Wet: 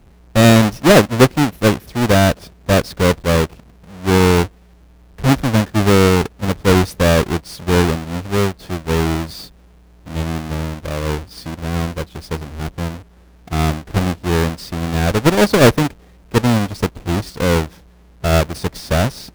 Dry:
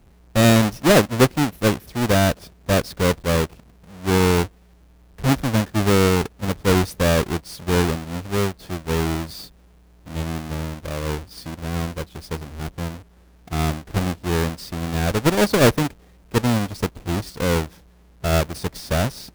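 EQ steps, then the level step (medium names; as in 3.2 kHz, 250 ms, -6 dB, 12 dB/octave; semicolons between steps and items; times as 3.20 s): treble shelf 6.9 kHz -4 dB; +5.0 dB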